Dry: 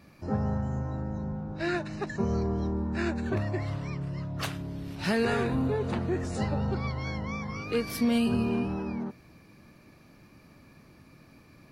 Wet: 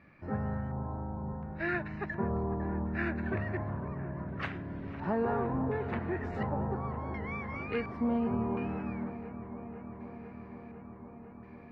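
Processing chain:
auto-filter low-pass square 0.7 Hz 980–2,000 Hz
delay with a low-pass on its return 502 ms, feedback 80%, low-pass 1,400 Hz, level −12 dB
level −5.5 dB

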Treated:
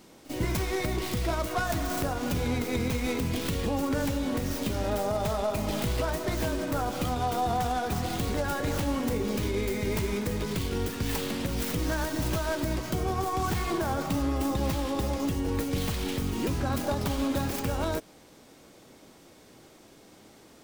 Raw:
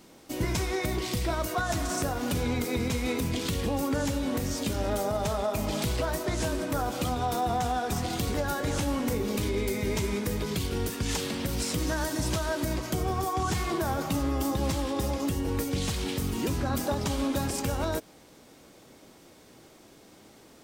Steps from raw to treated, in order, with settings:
stylus tracing distortion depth 0.32 ms
on a send: backwards echo 47 ms −16.5 dB

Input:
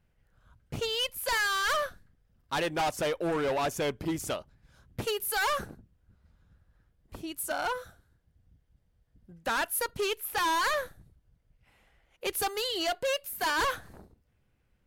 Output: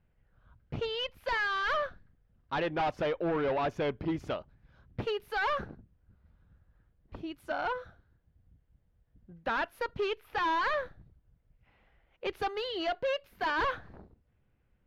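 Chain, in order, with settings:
high-frequency loss of the air 290 metres

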